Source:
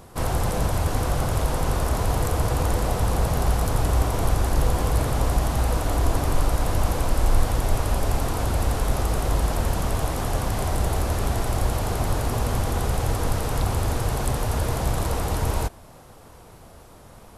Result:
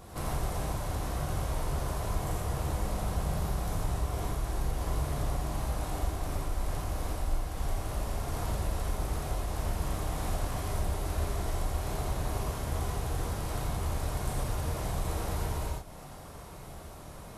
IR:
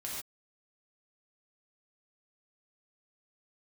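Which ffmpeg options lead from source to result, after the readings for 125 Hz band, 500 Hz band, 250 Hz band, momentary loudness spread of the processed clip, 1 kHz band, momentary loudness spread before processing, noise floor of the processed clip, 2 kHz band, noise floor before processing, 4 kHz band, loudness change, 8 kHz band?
-9.5 dB, -10.0 dB, -9.5 dB, 3 LU, -9.5 dB, 2 LU, -46 dBFS, -10.0 dB, -47 dBFS, -9.5 dB, -9.5 dB, -9.5 dB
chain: -filter_complex "[0:a]acompressor=threshold=-32dB:ratio=4[a];[1:a]atrim=start_sample=2205[b];[a][b]afir=irnorm=-1:irlink=0"

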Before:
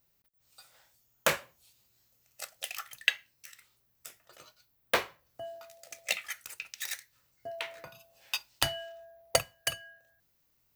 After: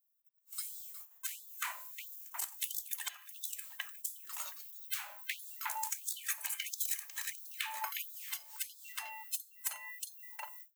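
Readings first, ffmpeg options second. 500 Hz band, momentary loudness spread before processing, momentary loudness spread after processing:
-26.5 dB, 20 LU, 8 LU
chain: -filter_complex "[0:a]afftfilt=real='real(if(between(b,1,1008),(2*floor((b-1)/24)+1)*24-b,b),0)':imag='imag(if(between(b,1,1008),(2*floor((b-1)/24)+1)*24-b,b),0)*if(between(b,1,1008),-1,1)':win_size=2048:overlap=0.75,asplit=2[a][b];[b]adelay=360,lowpass=f=2.1k:p=1,volume=-8dB,asplit=2[c][d];[d]adelay=360,lowpass=f=2.1k:p=1,volume=0.42,asplit=2[e][f];[f]adelay=360,lowpass=f=2.1k:p=1,volume=0.42,asplit=2[g][h];[h]adelay=360,lowpass=f=2.1k:p=1,volume=0.42,asplit=2[i][j];[j]adelay=360,lowpass=f=2.1k:p=1,volume=0.42[k];[c][e][g][i][k]amix=inputs=5:normalize=0[l];[a][l]amix=inputs=2:normalize=0,aeval=exprs='0.596*(cos(1*acos(clip(val(0)/0.596,-1,1)))-cos(1*PI/2))+0.211*(cos(7*acos(clip(val(0)/0.596,-1,1)))-cos(7*PI/2))':c=same,bandreject=f=205.5:t=h:w=4,bandreject=f=411:t=h:w=4,bandreject=f=616.5:t=h:w=4,bandreject=f=822:t=h:w=4,bandreject=f=1.0275k:t=h:w=4,asplit=2[m][n];[n]acontrast=37,volume=-1dB[o];[m][o]amix=inputs=2:normalize=0,afftfilt=real='re*lt(hypot(re,im),0.316)':imag='im*lt(hypot(re,im),0.316)':win_size=1024:overlap=0.75,agate=range=-28dB:threshold=-55dB:ratio=16:detection=peak,adynamicequalizer=threshold=0.00112:dfrequency=100:dqfactor=3.3:tfrequency=100:tqfactor=3.3:attack=5:release=100:ratio=0.375:range=2.5:mode=cutabove:tftype=bell,aexciter=amount=2.5:drive=8.4:freq=6.7k,acompressor=threshold=-24dB:ratio=6,alimiter=limit=-16.5dB:level=0:latency=1:release=241,afftfilt=real='re*gte(b*sr/1024,520*pow(3400/520,0.5+0.5*sin(2*PI*1.5*pts/sr)))':imag='im*gte(b*sr/1024,520*pow(3400/520,0.5+0.5*sin(2*PI*1.5*pts/sr)))':win_size=1024:overlap=0.75,volume=-4.5dB"

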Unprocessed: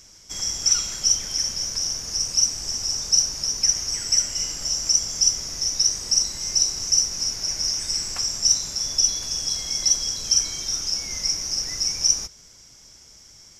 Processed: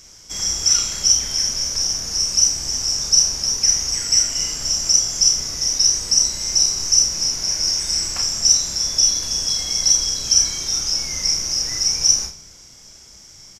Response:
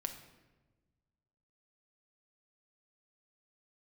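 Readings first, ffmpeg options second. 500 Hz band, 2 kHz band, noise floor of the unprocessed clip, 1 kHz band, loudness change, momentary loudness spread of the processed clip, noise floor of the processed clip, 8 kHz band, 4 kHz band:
+4.5 dB, +4.5 dB, -49 dBFS, +5.0 dB, +4.5 dB, 5 LU, -45 dBFS, +4.5 dB, +4.5 dB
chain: -filter_complex "[0:a]asplit=2[a][b];[b]adelay=32,volume=-5dB[c];[a][c]amix=inputs=2:normalize=0,asplit=2[d][e];[1:a]atrim=start_sample=2205,adelay=47[f];[e][f]afir=irnorm=-1:irlink=0,volume=-8dB[g];[d][g]amix=inputs=2:normalize=0,volume=3dB"

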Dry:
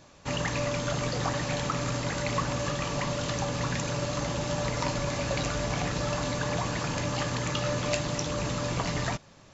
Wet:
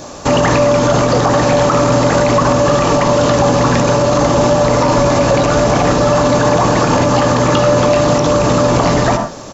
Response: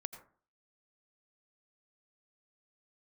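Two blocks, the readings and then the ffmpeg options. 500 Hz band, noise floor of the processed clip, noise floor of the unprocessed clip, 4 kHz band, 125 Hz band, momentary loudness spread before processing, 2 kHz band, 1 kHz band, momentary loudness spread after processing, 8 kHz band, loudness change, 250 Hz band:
+21.5 dB, -28 dBFS, -54 dBFS, +12.5 dB, +15.0 dB, 1 LU, +13.5 dB, +20.0 dB, 1 LU, n/a, +18.0 dB, +19.5 dB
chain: -filter_complex "[0:a]bandreject=f=970:w=23,acrossover=split=3600[a][b];[b]acompressor=threshold=-48dB:ratio=4:attack=1:release=60[c];[a][c]amix=inputs=2:normalize=0,asplit=2[d][e];[e]firequalizer=gain_entry='entry(140,0);entry(260,9);entry(580,10);entry(1100,8);entry(2100,-4);entry(5400,9)':delay=0.05:min_phase=1[f];[1:a]atrim=start_sample=2205,asetrate=57330,aresample=44100[g];[f][g]afir=irnorm=-1:irlink=0,volume=10dB[h];[d][h]amix=inputs=2:normalize=0,alimiter=level_in=13dB:limit=-1dB:release=50:level=0:latency=1,volume=-2.5dB"

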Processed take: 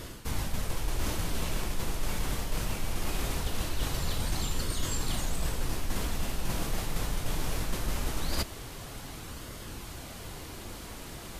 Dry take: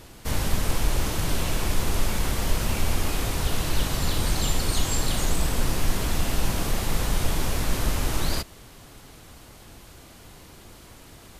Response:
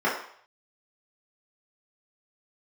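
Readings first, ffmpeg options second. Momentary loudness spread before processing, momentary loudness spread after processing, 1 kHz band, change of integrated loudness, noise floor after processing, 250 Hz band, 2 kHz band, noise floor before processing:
21 LU, 10 LU, -6.5 dB, -8.0 dB, -43 dBFS, -6.5 dB, -6.5 dB, -48 dBFS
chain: -af "areverse,acompressor=threshold=-32dB:ratio=6,areverse,flanger=delay=0.6:depth=6.2:regen=-67:speed=0.21:shape=sinusoidal,volume=9dB"

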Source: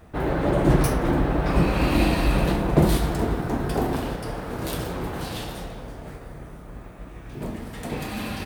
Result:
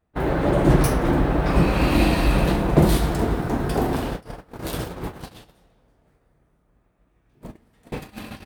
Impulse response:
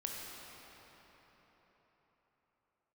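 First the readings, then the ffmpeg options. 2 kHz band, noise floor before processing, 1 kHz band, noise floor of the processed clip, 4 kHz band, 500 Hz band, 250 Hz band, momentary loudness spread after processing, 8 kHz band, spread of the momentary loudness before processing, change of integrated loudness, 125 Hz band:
+1.5 dB, -41 dBFS, +1.5 dB, -65 dBFS, +1.0 dB, +1.5 dB, +1.5 dB, 17 LU, +1.0 dB, 20 LU, +3.0 dB, +2.0 dB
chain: -af "agate=range=-26dB:threshold=-28dB:ratio=16:detection=peak,volume=2dB"

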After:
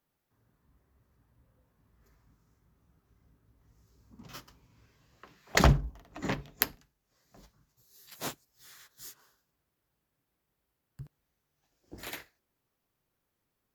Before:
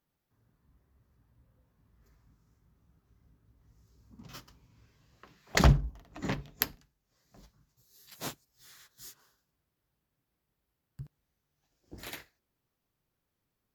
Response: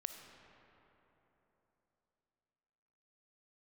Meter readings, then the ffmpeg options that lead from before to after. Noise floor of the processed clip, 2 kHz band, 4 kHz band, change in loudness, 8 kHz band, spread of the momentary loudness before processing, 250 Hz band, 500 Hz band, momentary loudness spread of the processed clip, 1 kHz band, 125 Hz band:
-83 dBFS, +2.5 dB, +1.0 dB, +0.5 dB, +1.5 dB, 25 LU, 0.0 dB, +2.0 dB, 24 LU, +2.5 dB, -1.5 dB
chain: -filter_complex "[0:a]bass=f=250:g=-4,treble=f=4k:g=-7,acrossover=split=420|5700[a][b][c];[c]acontrast=77[d];[a][b][d]amix=inputs=3:normalize=0,volume=2.5dB"

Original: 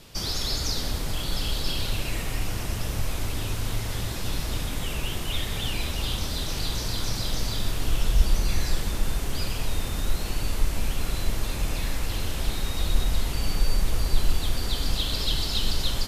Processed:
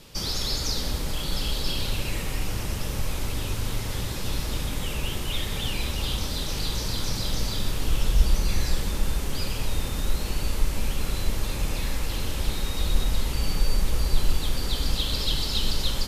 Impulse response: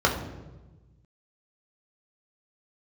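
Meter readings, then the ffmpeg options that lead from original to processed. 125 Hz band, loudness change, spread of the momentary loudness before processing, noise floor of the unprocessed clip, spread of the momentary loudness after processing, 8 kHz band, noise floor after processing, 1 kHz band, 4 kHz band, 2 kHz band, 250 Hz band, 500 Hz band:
0.0 dB, +0.5 dB, 5 LU, -31 dBFS, 5 LU, 0.0 dB, -31 dBFS, 0.0 dB, +0.5 dB, -0.5 dB, +1.0 dB, +1.0 dB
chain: -filter_complex "[0:a]bandreject=f=680:w=12,asplit=2[a][b];[1:a]atrim=start_sample=2205[c];[b][c]afir=irnorm=-1:irlink=0,volume=-31.5dB[d];[a][d]amix=inputs=2:normalize=0"

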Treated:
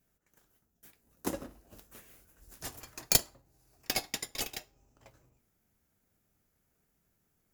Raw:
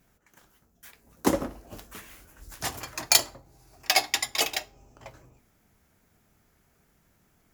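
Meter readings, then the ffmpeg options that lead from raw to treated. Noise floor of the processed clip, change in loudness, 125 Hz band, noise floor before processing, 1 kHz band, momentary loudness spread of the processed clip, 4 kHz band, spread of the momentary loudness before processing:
-77 dBFS, -7.5 dB, -4.5 dB, -67 dBFS, -13.0 dB, 21 LU, -9.5 dB, 22 LU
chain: -filter_complex "[0:a]highshelf=f=6.4k:g=9,asplit=2[a][b];[b]acrusher=samples=40:mix=1:aa=0.000001,volume=-8dB[c];[a][c]amix=inputs=2:normalize=0,aeval=exprs='1.5*(cos(1*acos(clip(val(0)/1.5,-1,1)))-cos(1*PI/2))+0.299*(cos(3*acos(clip(val(0)/1.5,-1,1)))-cos(3*PI/2))':c=same,volume=-6.5dB"

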